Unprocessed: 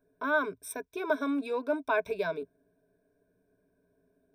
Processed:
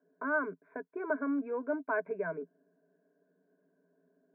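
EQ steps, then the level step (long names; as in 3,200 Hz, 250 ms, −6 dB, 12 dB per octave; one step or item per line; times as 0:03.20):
Chebyshev band-pass filter 160–2,000 Hz, order 5
dynamic equaliser 800 Hz, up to −5 dB, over −42 dBFS, Q 0.73
0.0 dB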